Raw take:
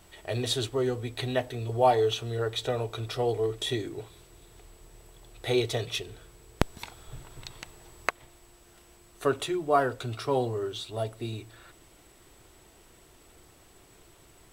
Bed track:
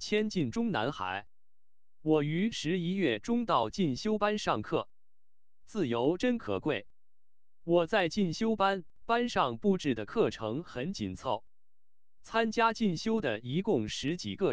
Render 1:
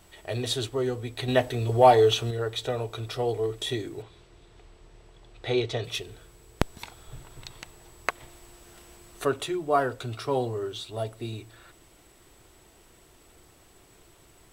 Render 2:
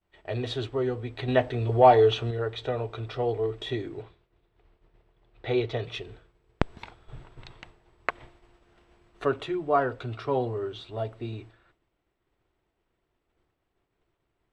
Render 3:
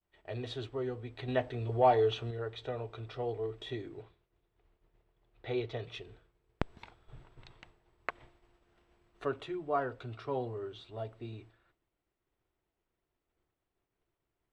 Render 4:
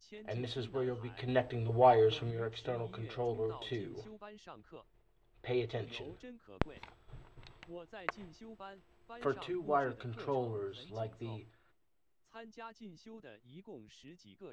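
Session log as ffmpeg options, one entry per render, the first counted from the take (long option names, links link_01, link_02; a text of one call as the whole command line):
ffmpeg -i in.wav -filter_complex "[0:a]asettb=1/sr,asplit=3[link_01][link_02][link_03];[link_01]atrim=end=1.284[link_04];[link_02]atrim=start=1.28:end=2.31,asetpts=PTS-STARTPTS,afade=type=in:duration=0.004:curve=qsin,afade=type=out:start_time=1.026:duration=0.004:curve=qsin,acontrast=47[link_05];[link_03]atrim=start=2.306[link_06];[link_04][link_05]acrossfade=duration=0.004:curve1=hsin:curve2=qsin[link_07];[link_07][link_06]acrossfade=duration=0.004:curve1=qsin:curve2=hsin,asettb=1/sr,asplit=3[link_08][link_09][link_10];[link_08]atrim=end=4.024[link_11];[link_09]atrim=start=4.02:end=5.84,asetpts=PTS-STARTPTS,afade=type=in:duration=0.004:curve=qsin,afade=type=out:start_time=1.816:duration=0.004:curve=qsin,lowpass=4900[link_12];[link_10]atrim=start=5.836[link_13];[link_11][link_12]acrossfade=duration=0.004:curve1=hsin:curve2=qsin[link_14];[link_14][link_13]acrossfade=duration=0.004:curve1=qsin:curve2=hsin,asettb=1/sr,asplit=3[link_15][link_16][link_17];[link_15]atrim=end=8.094[link_18];[link_16]atrim=start=8.09:end=9.25,asetpts=PTS-STARTPTS,afade=type=in:duration=0.004:curve=qsin,afade=type=out:start_time=1.156:duration=0.004:curve=qsin,acontrast=37[link_19];[link_17]atrim=start=9.246[link_20];[link_18][link_19]acrossfade=duration=0.004:curve1=hsin:curve2=qsin[link_21];[link_21][link_20]acrossfade=duration=0.004:curve1=qsin:curve2=hsin" out.wav
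ffmpeg -i in.wav -af "agate=range=-33dB:threshold=-43dB:ratio=3:detection=peak,lowpass=2800" out.wav
ffmpeg -i in.wav -af "volume=-8.5dB" out.wav
ffmpeg -i in.wav -i bed.wav -filter_complex "[1:a]volume=-22dB[link_01];[0:a][link_01]amix=inputs=2:normalize=0" out.wav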